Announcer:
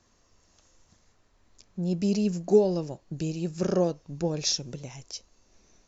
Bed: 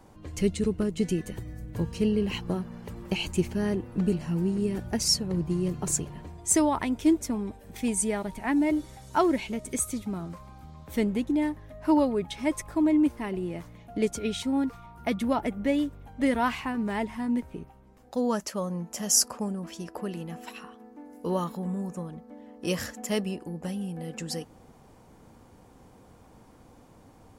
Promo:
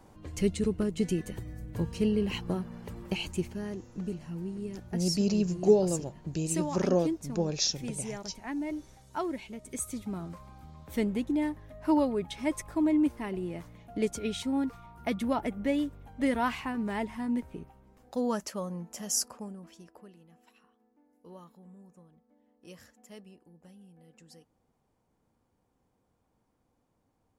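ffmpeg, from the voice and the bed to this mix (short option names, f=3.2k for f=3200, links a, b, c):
-filter_complex "[0:a]adelay=3150,volume=-1.5dB[a];[1:a]volume=5dB,afade=t=out:st=2.96:d=0.72:silence=0.398107,afade=t=in:st=9.59:d=0.56:silence=0.446684,afade=t=out:st=18.27:d=1.89:silence=0.125893[b];[a][b]amix=inputs=2:normalize=0"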